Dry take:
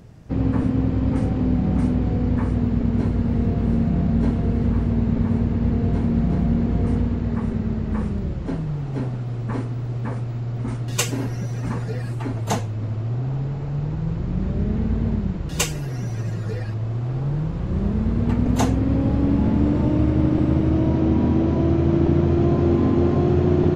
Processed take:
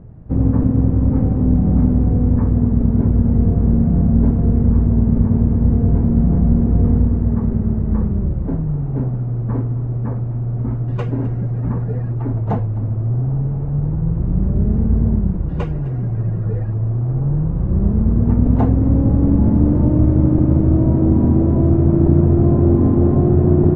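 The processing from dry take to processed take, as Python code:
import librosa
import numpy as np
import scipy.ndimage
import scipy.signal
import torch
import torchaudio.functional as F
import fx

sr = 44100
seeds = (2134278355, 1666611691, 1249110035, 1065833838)

p1 = scipy.signal.sosfilt(scipy.signal.butter(2, 1300.0, 'lowpass', fs=sr, output='sos'), x)
p2 = fx.tilt_eq(p1, sr, slope=-2.0)
y = p2 + fx.echo_single(p2, sr, ms=256, db=-19.0, dry=0)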